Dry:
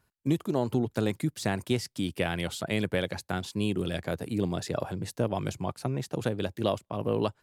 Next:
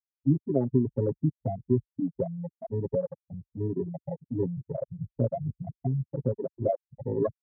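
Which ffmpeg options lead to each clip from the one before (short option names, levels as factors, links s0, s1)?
-af "afftfilt=real='re*gte(hypot(re,im),0.178)':imag='im*gte(hypot(re,im),0.178)':win_size=1024:overlap=0.75,aecho=1:1:7.4:0.96,afwtdn=0.0112"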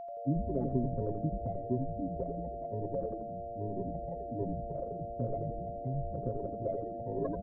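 -filter_complex "[0:a]aeval=exprs='val(0)+0.0251*sin(2*PI*690*n/s)':c=same,asplit=2[s0][s1];[s1]asplit=8[s2][s3][s4][s5][s6][s7][s8][s9];[s2]adelay=84,afreqshift=-110,volume=0.596[s10];[s3]adelay=168,afreqshift=-220,volume=0.339[s11];[s4]adelay=252,afreqshift=-330,volume=0.193[s12];[s5]adelay=336,afreqshift=-440,volume=0.111[s13];[s6]adelay=420,afreqshift=-550,volume=0.0631[s14];[s7]adelay=504,afreqshift=-660,volume=0.0359[s15];[s8]adelay=588,afreqshift=-770,volume=0.0204[s16];[s9]adelay=672,afreqshift=-880,volume=0.0116[s17];[s10][s11][s12][s13][s14][s15][s16][s17]amix=inputs=8:normalize=0[s18];[s0][s18]amix=inputs=2:normalize=0,volume=0.376"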